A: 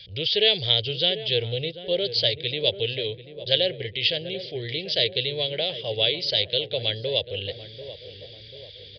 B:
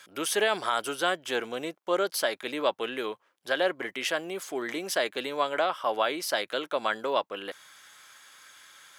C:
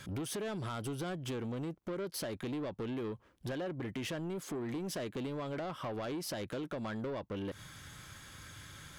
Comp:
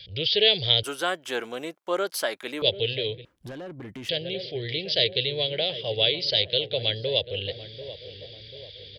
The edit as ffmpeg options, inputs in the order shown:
-filter_complex "[0:a]asplit=3[s0][s1][s2];[s0]atrim=end=0.832[s3];[1:a]atrim=start=0.828:end=2.622[s4];[s1]atrim=start=2.618:end=3.252[s5];[2:a]atrim=start=3.248:end=4.092[s6];[s2]atrim=start=4.088[s7];[s3][s4]acrossfade=d=0.004:c1=hsin:c2=hsin[s8];[s8][s5]acrossfade=d=0.004:c1=hsin:c2=hsin[s9];[s9][s6]acrossfade=d=0.004:c1=hsin:c2=hsin[s10];[s10][s7]acrossfade=d=0.004:c1=hsin:c2=hsin"

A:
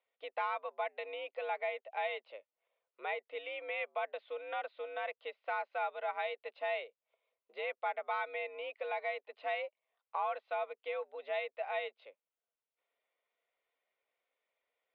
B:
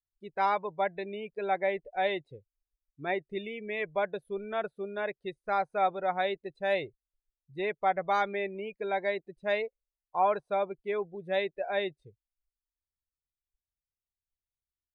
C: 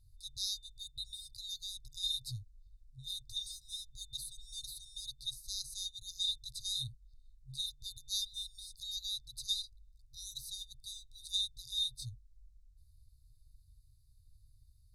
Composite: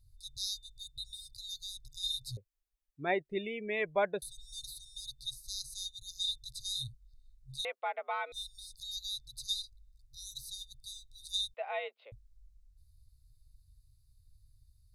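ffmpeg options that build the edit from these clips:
-filter_complex "[0:a]asplit=2[s0][s1];[2:a]asplit=4[s2][s3][s4][s5];[s2]atrim=end=2.372[s6];[1:a]atrim=start=2.368:end=4.222[s7];[s3]atrim=start=4.218:end=7.652[s8];[s0]atrim=start=7.648:end=8.322[s9];[s4]atrim=start=8.318:end=11.542[s10];[s1]atrim=start=11.538:end=12.122[s11];[s5]atrim=start=12.118[s12];[s6][s7]acrossfade=d=0.004:c1=hsin:c2=hsin[s13];[s13][s8]acrossfade=d=0.004:c1=hsin:c2=hsin[s14];[s14][s9]acrossfade=d=0.004:c1=hsin:c2=hsin[s15];[s15][s10]acrossfade=d=0.004:c1=hsin:c2=hsin[s16];[s16][s11]acrossfade=d=0.004:c1=hsin:c2=hsin[s17];[s17][s12]acrossfade=d=0.004:c1=hsin:c2=hsin"

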